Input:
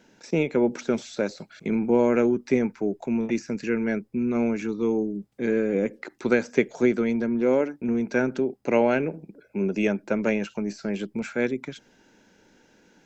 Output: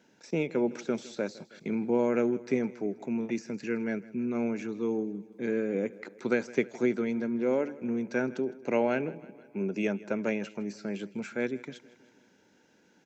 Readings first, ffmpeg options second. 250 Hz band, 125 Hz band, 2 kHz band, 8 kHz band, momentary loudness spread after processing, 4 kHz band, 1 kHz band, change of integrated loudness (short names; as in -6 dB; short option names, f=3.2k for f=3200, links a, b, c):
-6.0 dB, -6.5 dB, -6.0 dB, n/a, 9 LU, -6.0 dB, -6.0 dB, -6.0 dB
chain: -af "highpass=90,aecho=1:1:160|320|480|640|800:0.1|0.057|0.0325|0.0185|0.0106,volume=-6dB"